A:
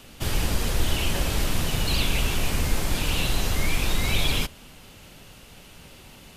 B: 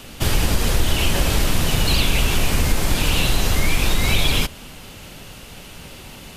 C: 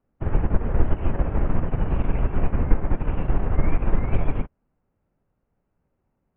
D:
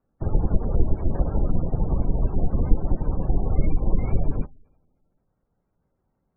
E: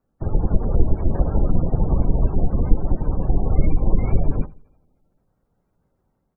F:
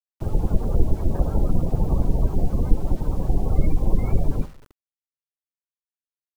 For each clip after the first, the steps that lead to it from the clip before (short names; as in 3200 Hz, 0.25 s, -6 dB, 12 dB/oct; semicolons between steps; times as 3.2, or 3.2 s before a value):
compressor 2:1, threshold -23 dBFS, peak gain reduction 5 dB; gain +8.5 dB
Gaussian blur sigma 5.9 samples; upward expander 2.5:1, over -36 dBFS; gain +3.5 dB
two-slope reverb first 0.22 s, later 1.5 s, DRR 15.5 dB; spectral gate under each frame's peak -30 dB strong
AGC gain up to 3.5 dB; feedback echo 83 ms, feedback 30%, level -20 dB; gain +1 dB
requantised 8-bit, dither none; gain -2 dB